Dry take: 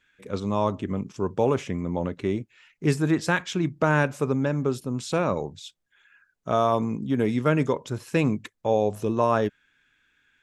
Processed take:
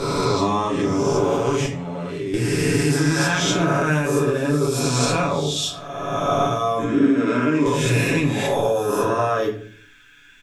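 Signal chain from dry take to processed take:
peak hold with a rise ahead of every peak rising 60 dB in 1.67 s
high-shelf EQ 3,100 Hz +8 dB
comb filter 7 ms, depth 59%
0:01.66–0:02.34: output level in coarse steps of 19 dB
brickwall limiter −11 dBFS, peak gain reduction 9 dB
downward compressor, threshold −26 dBFS, peak gain reduction 9.5 dB
0:06.84–0:07.66: loudspeaker in its box 210–7,100 Hz, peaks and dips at 280 Hz +8 dB, 520 Hz −4 dB, 780 Hz −4 dB, 2,000 Hz −5 dB, 3,400 Hz −7 dB, 6,100 Hz −5 dB
rectangular room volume 49 cubic metres, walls mixed, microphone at 0.65 metres
level +5.5 dB

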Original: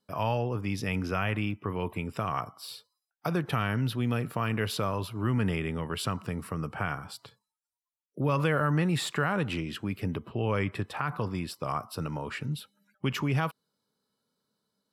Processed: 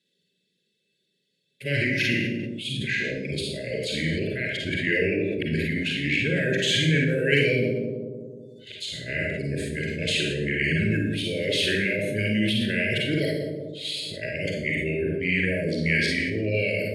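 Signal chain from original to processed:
played backwards from end to start
Chebyshev band-stop filter 710–1,800 Hz, order 5
reverb reduction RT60 1.1 s
meter weighting curve D
gain on a spectral selection 0:13.61–0:13.85, 1,400–7,600 Hz −16 dB
high-shelf EQ 3,300 Hz −8 dB
mains-hum notches 50/100/150/200 Hz
in parallel at −2 dB: output level in coarse steps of 13 dB
on the sum: change of speed 0.881×
on a send: bucket-brigade delay 185 ms, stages 1,024, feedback 56%, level −8 dB
on the sum: four-comb reverb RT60 0.65 s, DRR −1 dB
level that may fall only so fast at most 25 dB per second
level +1.5 dB

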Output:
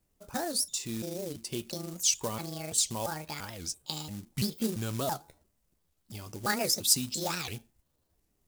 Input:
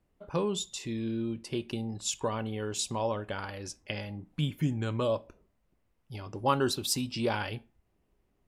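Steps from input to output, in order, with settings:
pitch shifter gated in a rhythm +7 semitones, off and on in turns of 340 ms
dynamic equaliser 200 Hz, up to +5 dB, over −53 dBFS, Q 6.2
floating-point word with a short mantissa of 2 bits
bass and treble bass +2 dB, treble +13 dB
wow of a warped record 78 rpm, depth 250 cents
level −4 dB

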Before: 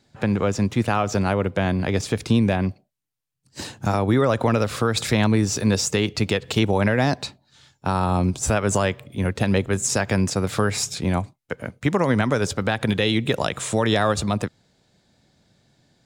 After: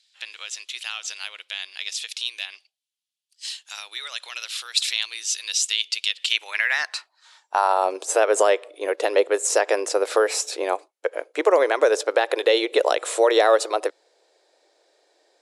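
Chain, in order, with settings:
high-pass filter sweep 3,100 Hz → 460 Hz, 0:06.40–0:08.37
wrong playback speed 24 fps film run at 25 fps
linear-phase brick-wall band-pass 290–12,000 Hz

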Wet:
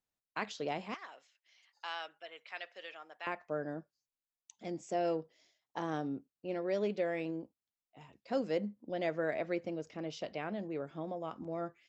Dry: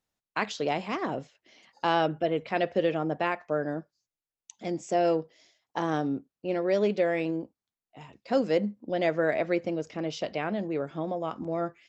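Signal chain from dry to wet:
0:00.94–0:03.27: high-pass filter 1,400 Hz 12 dB per octave
level −8.5 dB

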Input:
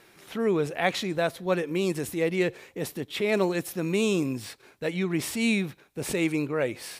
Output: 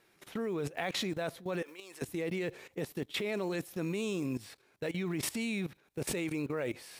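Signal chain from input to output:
one scale factor per block 7 bits
0:01.62–0:02.02: high-pass filter 730 Hz 12 dB per octave
output level in coarse steps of 17 dB

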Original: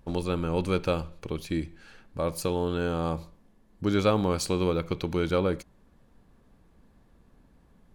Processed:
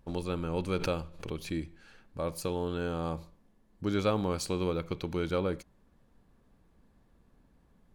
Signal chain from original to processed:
0:00.77–0:01.52: background raised ahead of every attack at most 93 dB per second
level −5 dB

